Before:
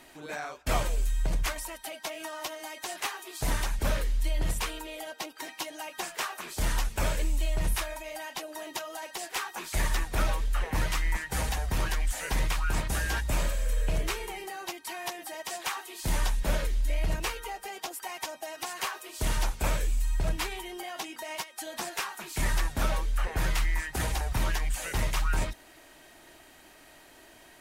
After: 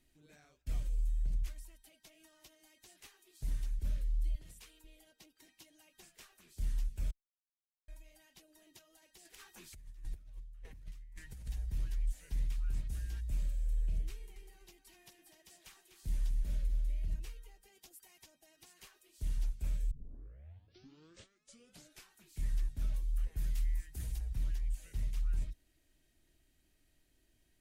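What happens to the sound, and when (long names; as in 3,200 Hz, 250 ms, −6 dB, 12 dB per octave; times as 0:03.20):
0:04.35–0:04.84: high-pass filter 490 Hz 6 dB per octave
0:07.11–0:07.88: silence
0:09.25–0:11.48: compressor whose output falls as the input rises −34 dBFS, ratio −0.5
0:14.11–0:17.10: repeating echo 248 ms, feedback 25%, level −9 dB
0:17.75–0:18.22: high-shelf EQ 7,100 Hz +6.5 dB
0:19.91: tape start 2.24 s
0:22.94–0:24.19: high-shelf EQ 8,100 Hz +10 dB
whole clip: guitar amp tone stack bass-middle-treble 10-0-1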